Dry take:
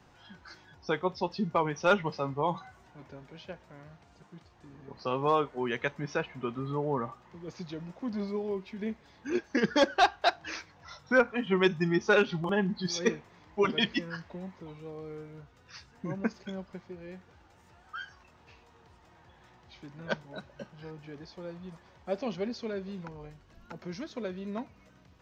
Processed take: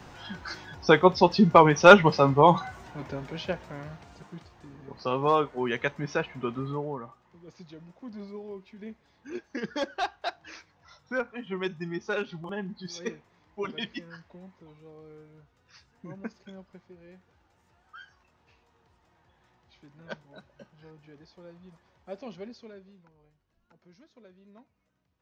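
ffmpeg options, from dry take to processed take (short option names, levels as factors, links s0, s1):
-af "volume=3.98,afade=t=out:st=3.5:d=1.27:silence=0.354813,afade=t=out:st=6.59:d=0.4:silence=0.316228,afade=t=out:st=22.38:d=0.63:silence=0.281838"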